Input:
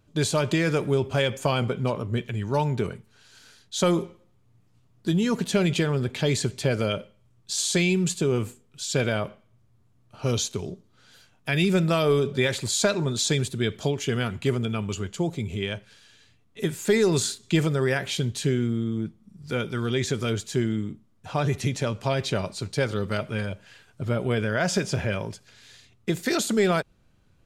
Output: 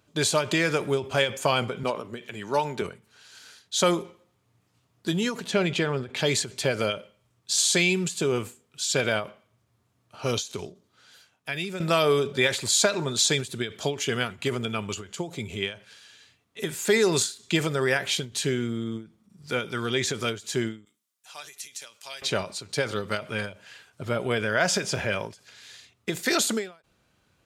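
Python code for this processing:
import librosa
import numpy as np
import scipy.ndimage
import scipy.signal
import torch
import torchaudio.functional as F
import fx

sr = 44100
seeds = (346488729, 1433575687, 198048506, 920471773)

y = fx.highpass(x, sr, hz=190.0, slope=12, at=(1.83, 2.82))
y = fx.lowpass(y, sr, hz=2900.0, slope=6, at=(5.46, 6.17))
y = fx.differentiator(y, sr, at=(20.85, 22.22))
y = fx.edit(y, sr, fx.fade_out_to(start_s=10.71, length_s=1.09, floor_db=-12.0), tone=tone)
y = scipy.signal.sosfilt(scipy.signal.butter(2, 49.0, 'highpass', fs=sr, output='sos'), y)
y = fx.low_shelf(y, sr, hz=330.0, db=-11.5)
y = fx.end_taper(y, sr, db_per_s=170.0)
y = y * librosa.db_to_amplitude(4.0)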